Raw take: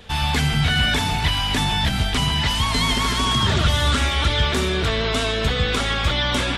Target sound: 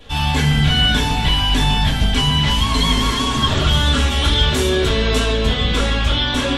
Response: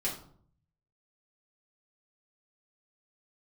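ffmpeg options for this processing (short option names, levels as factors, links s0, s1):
-filter_complex "[0:a]asettb=1/sr,asplit=3[s0][s1][s2];[s0]atrim=end=4.104[s3];[s1]atrim=start=4.1:end=5.19,asetpts=PTS-STARTPTS,afade=t=in:d=0.004:c=qsin,afade=t=out:st=1.086:d=0.004:c=qsin,highshelf=f=7500:g=10[s4];[s2]atrim=start=5.186[s5];[s3][s4]acrossfade=d=0.004:c1=hsin:c2=qsin[s6];[s6][s5]acrossfade=d=0.004:c1=qsin:c2=hsin[s7];[1:a]atrim=start_sample=2205,asetrate=61740,aresample=44100[s8];[s7][s8]afir=irnorm=-1:irlink=0"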